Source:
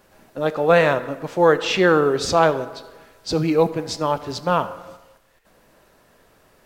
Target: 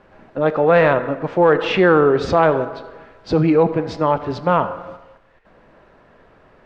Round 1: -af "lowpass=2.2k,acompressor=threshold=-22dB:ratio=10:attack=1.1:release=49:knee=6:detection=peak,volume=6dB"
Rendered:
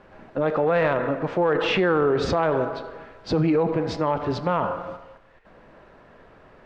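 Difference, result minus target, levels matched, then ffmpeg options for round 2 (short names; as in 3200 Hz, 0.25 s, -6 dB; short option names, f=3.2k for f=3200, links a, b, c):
compressor: peak gain reduction +8.5 dB
-af "lowpass=2.2k,acompressor=threshold=-12.5dB:ratio=10:attack=1.1:release=49:knee=6:detection=peak,volume=6dB"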